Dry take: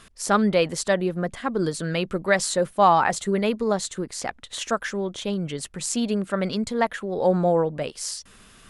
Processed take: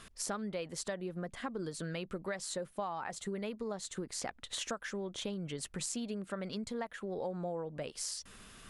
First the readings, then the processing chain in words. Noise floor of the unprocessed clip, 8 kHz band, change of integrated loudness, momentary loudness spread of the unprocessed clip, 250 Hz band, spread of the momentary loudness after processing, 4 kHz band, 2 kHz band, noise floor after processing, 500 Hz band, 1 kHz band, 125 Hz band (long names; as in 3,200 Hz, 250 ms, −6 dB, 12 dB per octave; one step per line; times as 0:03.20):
−53 dBFS, −10.0 dB, −15.5 dB, 10 LU, −15.0 dB, 3 LU, −11.0 dB, −16.0 dB, −62 dBFS, −16.5 dB, −20.0 dB, −14.5 dB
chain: downward compressor 10 to 1, threshold −32 dBFS, peak gain reduction 20 dB
level −3.5 dB